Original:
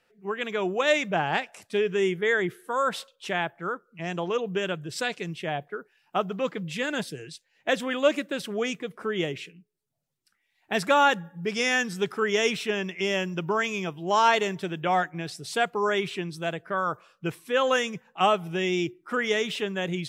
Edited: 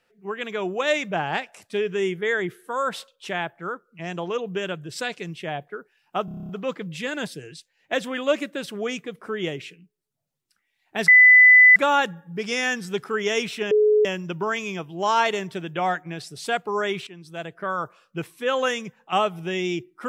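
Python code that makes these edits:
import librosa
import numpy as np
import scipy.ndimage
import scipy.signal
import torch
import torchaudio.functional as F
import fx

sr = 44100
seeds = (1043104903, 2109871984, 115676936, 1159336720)

y = fx.edit(x, sr, fx.stutter(start_s=6.25, slice_s=0.03, count=9),
    fx.insert_tone(at_s=10.84, length_s=0.68, hz=2000.0, db=-8.0),
    fx.bleep(start_s=12.79, length_s=0.34, hz=424.0, db=-14.0),
    fx.fade_in_from(start_s=16.15, length_s=0.56, floor_db=-15.5), tone=tone)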